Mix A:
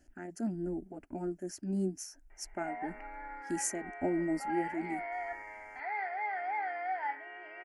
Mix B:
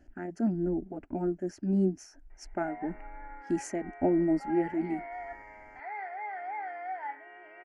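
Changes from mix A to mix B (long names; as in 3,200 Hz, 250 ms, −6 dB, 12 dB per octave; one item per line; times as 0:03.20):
speech +7.0 dB
master: add head-to-tape spacing loss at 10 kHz 22 dB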